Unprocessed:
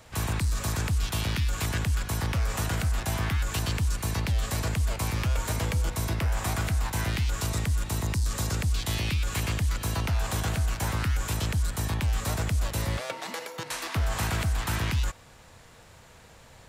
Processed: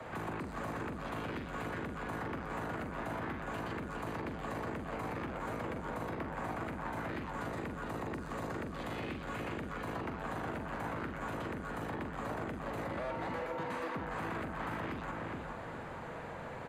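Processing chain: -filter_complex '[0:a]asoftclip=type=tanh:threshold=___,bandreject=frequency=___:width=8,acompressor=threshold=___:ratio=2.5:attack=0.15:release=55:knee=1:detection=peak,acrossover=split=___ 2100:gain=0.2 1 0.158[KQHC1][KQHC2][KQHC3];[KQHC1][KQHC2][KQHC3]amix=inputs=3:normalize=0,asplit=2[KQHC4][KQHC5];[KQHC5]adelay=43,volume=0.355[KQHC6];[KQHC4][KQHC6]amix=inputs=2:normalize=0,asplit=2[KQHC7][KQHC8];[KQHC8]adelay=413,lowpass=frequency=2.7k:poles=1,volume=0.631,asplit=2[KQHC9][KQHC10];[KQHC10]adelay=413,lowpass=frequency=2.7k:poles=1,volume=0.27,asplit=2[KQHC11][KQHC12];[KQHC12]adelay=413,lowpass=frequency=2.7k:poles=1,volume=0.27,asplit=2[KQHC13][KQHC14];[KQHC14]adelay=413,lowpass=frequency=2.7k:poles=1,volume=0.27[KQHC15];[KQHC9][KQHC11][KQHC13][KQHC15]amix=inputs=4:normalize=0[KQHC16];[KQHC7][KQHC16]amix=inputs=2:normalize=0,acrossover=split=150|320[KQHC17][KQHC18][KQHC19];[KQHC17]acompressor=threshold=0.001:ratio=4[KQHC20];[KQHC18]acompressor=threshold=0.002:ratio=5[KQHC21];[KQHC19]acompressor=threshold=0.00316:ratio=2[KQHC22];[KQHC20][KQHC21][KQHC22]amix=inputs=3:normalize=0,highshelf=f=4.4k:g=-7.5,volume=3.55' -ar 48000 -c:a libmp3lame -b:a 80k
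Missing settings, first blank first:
0.0376, 5.5k, 0.00708, 150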